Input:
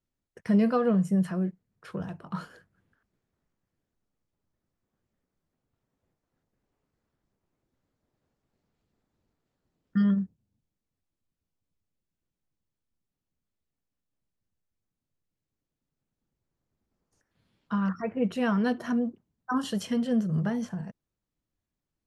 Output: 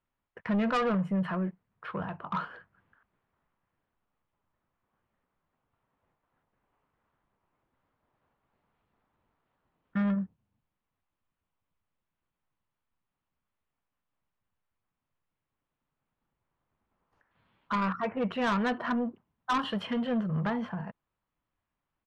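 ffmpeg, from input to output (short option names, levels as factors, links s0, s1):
-af "firequalizer=gain_entry='entry(340,0);entry(1000,13);entry(1600,8);entry(3000,5);entry(6100,-20)':delay=0.05:min_phase=1,asoftclip=type=tanh:threshold=0.0794,volume=0.841"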